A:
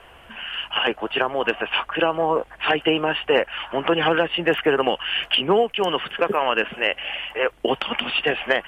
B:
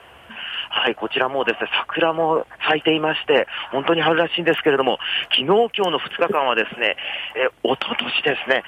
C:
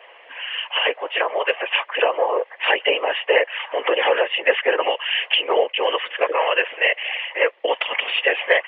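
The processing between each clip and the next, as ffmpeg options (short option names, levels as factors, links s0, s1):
-af "highpass=f=68:w=0.5412,highpass=f=68:w=1.3066,volume=1.26"
-af "afftfilt=real='hypot(re,im)*cos(2*PI*random(0))':imag='hypot(re,im)*sin(2*PI*random(1))':win_size=512:overlap=0.75,highpass=f=500:w=0.5412,highpass=f=500:w=1.3066,equalizer=f=510:t=q:w=4:g=5,equalizer=f=740:t=q:w=4:g=-4,equalizer=f=1400:t=q:w=4:g=-10,equalizer=f=2000:t=q:w=4:g=7,lowpass=f=3200:w=0.5412,lowpass=f=3200:w=1.3066,volume=2.24"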